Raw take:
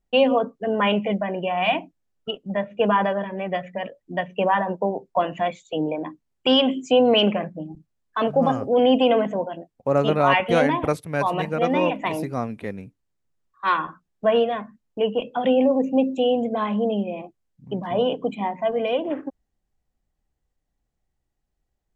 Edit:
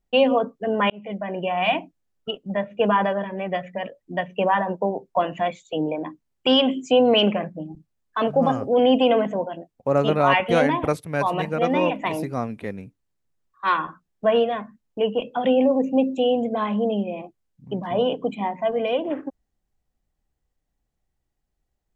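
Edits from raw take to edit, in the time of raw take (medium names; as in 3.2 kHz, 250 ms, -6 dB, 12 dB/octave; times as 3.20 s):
0.90–1.42 s: fade in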